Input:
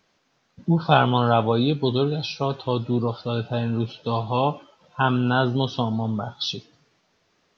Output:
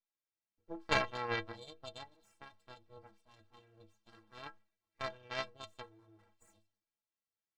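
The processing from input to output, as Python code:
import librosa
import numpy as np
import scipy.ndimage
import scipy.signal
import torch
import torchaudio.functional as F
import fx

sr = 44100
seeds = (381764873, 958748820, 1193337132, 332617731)

y = np.abs(x)
y = fx.cheby_harmonics(y, sr, harmonics=(3, 6, 8), levels_db=(-10, -42, -36), full_scale_db=-2.0)
y = fx.stiff_resonator(y, sr, f0_hz=98.0, decay_s=0.28, stiffness=0.03)
y = y * librosa.db_to_amplitude(3.5)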